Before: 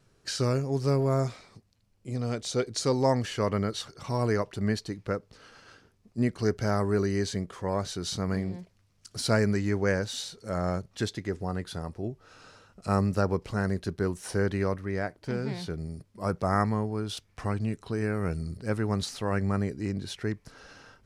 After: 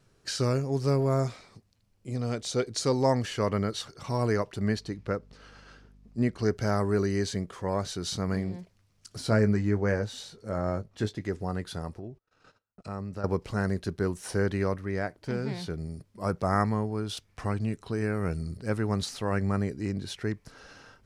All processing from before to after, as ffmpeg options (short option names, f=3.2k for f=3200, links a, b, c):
-filter_complex "[0:a]asettb=1/sr,asplit=3[a][b][c];[a]atrim=end=4.754[d];[b]atrim=start=4.75:end=6.53,asetpts=PTS-STARTPTS,afade=t=in:d=0.004:c=qsin,afade=t=out:st=1.776:d=0.004:c=qsin,highshelf=f=8.6k:g=-8,aeval=exprs='val(0)+0.002*(sin(2*PI*50*n/s)+sin(2*PI*2*50*n/s)/2+sin(2*PI*3*50*n/s)/3+sin(2*PI*4*50*n/s)/4+sin(2*PI*5*50*n/s)/5)':c=same[e];[c]atrim=start=6.526[f];[d][e]acrossfade=d=0.004:c1=hsin:c2=qsin[g];[g][f]acrossfade=d=0.004:c1=qsin:c2=hsin,asettb=1/sr,asplit=3[h][i][j];[h]atrim=end=9.184[k];[i]atrim=start=9.18:end=11.21,asetpts=PTS-STARTPTS,afade=t=in:d=0.004:c=qsin,afade=t=out:st=2.026:d=0.004:c=qsin,highshelf=f=2.1k:g=-8.5,asplit=2[l][m];[m]adelay=19,volume=-9dB[n];[l][n]amix=inputs=2:normalize=0,atrim=end_sample=89523[o];[j]atrim=start=11.206[p];[k][o]acrossfade=d=0.004:c1=hsin:c2=qsin[q];[q][p]acrossfade=d=0.004:c1=qsin:c2=hsin,asettb=1/sr,asplit=3[r][s][t];[r]atrim=end=11.994[u];[s]atrim=start=11.99:end=13.24,asetpts=PTS-STARTPTS,afade=t=in:d=0.004:c=qsin,afade=t=out:st=1.246:d=0.004:c=qsin,agate=range=-35dB:threshold=-52dB:ratio=16:release=100:detection=peak,highshelf=f=6.9k:g=-11.5,acompressor=threshold=-41dB:ratio=2:attack=3.2:release=140:knee=1:detection=peak[v];[t]atrim=start=13.236[w];[u][v]acrossfade=d=0.004:c1=hsin:c2=qsin[x];[x][w]acrossfade=d=0.004:c1=qsin:c2=hsin"